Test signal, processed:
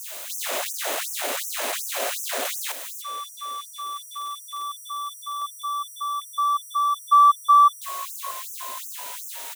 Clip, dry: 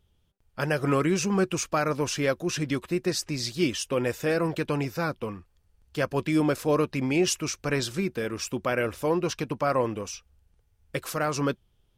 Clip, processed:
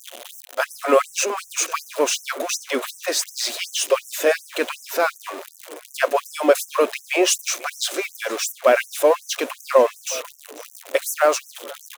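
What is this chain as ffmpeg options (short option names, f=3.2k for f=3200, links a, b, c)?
-filter_complex "[0:a]aeval=exprs='val(0)+0.5*0.02*sgn(val(0))':c=same,superequalizer=6b=0.501:8b=2.24:14b=0.631,asplit=6[a][b][c][d][e][f];[b]adelay=489,afreqshift=-55,volume=-20.5dB[g];[c]adelay=978,afreqshift=-110,volume=-25.2dB[h];[d]adelay=1467,afreqshift=-165,volume=-30dB[i];[e]adelay=1956,afreqshift=-220,volume=-34.7dB[j];[f]adelay=2445,afreqshift=-275,volume=-39.4dB[k];[a][g][h][i][j][k]amix=inputs=6:normalize=0,afftfilt=real='re*gte(b*sr/1024,230*pow(5600/230,0.5+0.5*sin(2*PI*2.7*pts/sr)))':imag='im*gte(b*sr/1024,230*pow(5600/230,0.5+0.5*sin(2*PI*2.7*pts/sr)))':win_size=1024:overlap=0.75,volume=8dB"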